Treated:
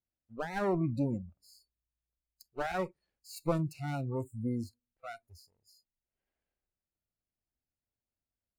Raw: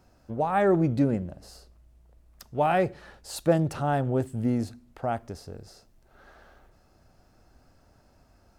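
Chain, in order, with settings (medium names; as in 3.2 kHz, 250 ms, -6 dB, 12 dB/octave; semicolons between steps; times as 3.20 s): comb filter that takes the minimum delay 0.43 ms; spectral noise reduction 28 dB; dynamic bell 2.7 kHz, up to -4 dB, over -47 dBFS, Q 1.5; trim -7.5 dB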